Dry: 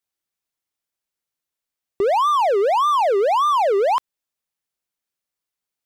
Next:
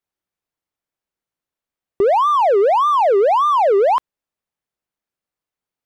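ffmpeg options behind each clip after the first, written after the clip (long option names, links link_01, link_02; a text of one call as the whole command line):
ffmpeg -i in.wav -af "highshelf=frequency=2400:gain=-11.5,volume=4.5dB" out.wav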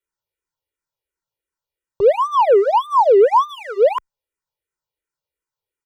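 ffmpeg -i in.wav -filter_complex "[0:a]aecho=1:1:2.1:0.81,asplit=2[link_01][link_02];[link_02]afreqshift=-2.8[link_03];[link_01][link_03]amix=inputs=2:normalize=1" out.wav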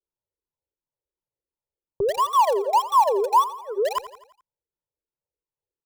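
ffmpeg -i in.wav -filter_complex "[0:a]acrossover=split=920[link_01][link_02];[link_01]acompressor=threshold=-20dB:ratio=6[link_03];[link_02]aeval=exprs='val(0)*gte(abs(val(0)),0.0531)':channel_layout=same[link_04];[link_03][link_04]amix=inputs=2:normalize=0,aecho=1:1:85|170|255|340|425:0.178|0.0907|0.0463|0.0236|0.012,volume=-1.5dB" out.wav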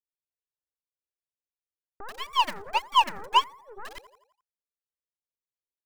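ffmpeg -i in.wav -af "aeval=exprs='0.355*(cos(1*acos(clip(val(0)/0.355,-1,1)))-cos(1*PI/2))+0.141*(cos(3*acos(clip(val(0)/0.355,-1,1)))-cos(3*PI/2))+0.00631*(cos(4*acos(clip(val(0)/0.355,-1,1)))-cos(4*PI/2))+0.00562*(cos(8*acos(clip(val(0)/0.355,-1,1)))-cos(8*PI/2))':channel_layout=same" out.wav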